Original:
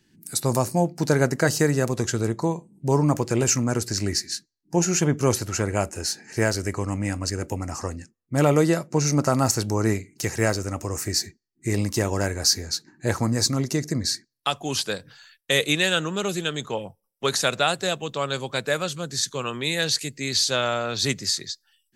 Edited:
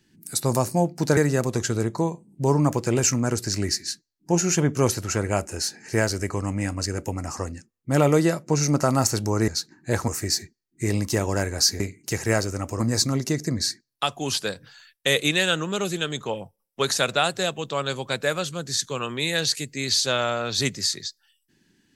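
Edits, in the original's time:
1.17–1.61 cut
9.92–10.92 swap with 12.64–13.24

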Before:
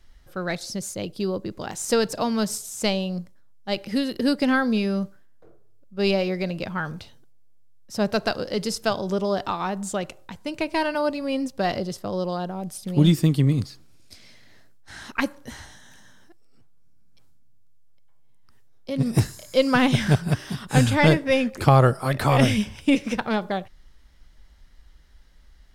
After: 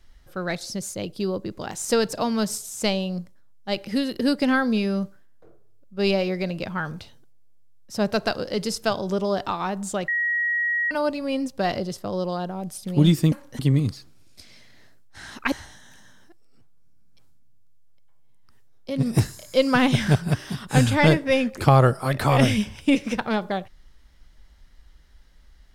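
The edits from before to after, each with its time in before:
10.08–10.91 bleep 1900 Hz -20.5 dBFS
15.25–15.52 move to 13.32

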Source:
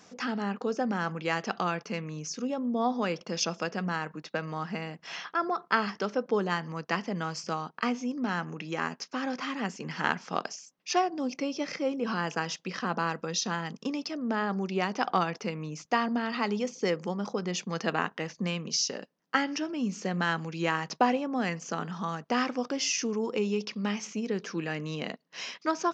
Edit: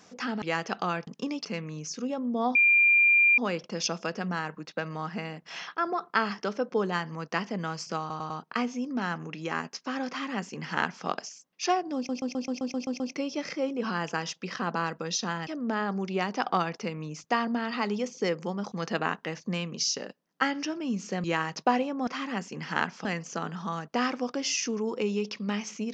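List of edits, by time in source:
0.42–1.2 cut
2.95 add tone 2390 Hz -17 dBFS 0.83 s
7.57 stutter 0.10 s, 4 plays
9.35–10.33 copy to 21.41
11.23 stutter 0.13 s, 9 plays
13.7–14.08 move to 1.85
17.33–17.65 cut
20.17–20.58 cut

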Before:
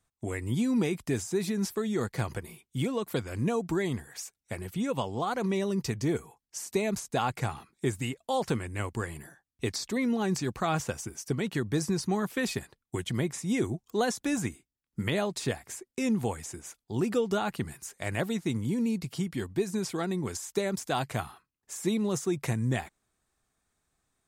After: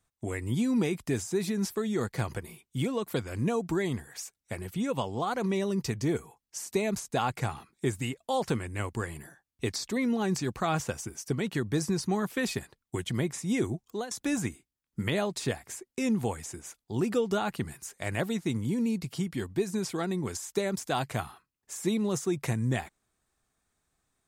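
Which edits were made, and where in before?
13.83–14.11 fade out, to -19.5 dB

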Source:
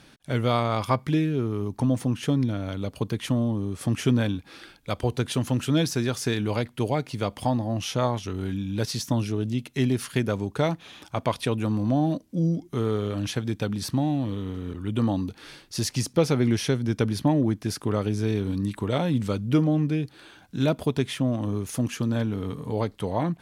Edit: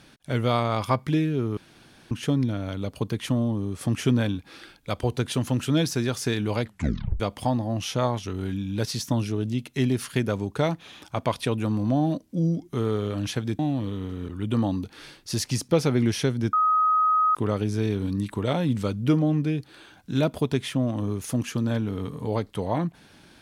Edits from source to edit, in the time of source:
1.57–2.11 room tone
6.64 tape stop 0.56 s
13.59–14.04 cut
16.98–17.8 bleep 1260 Hz -17.5 dBFS

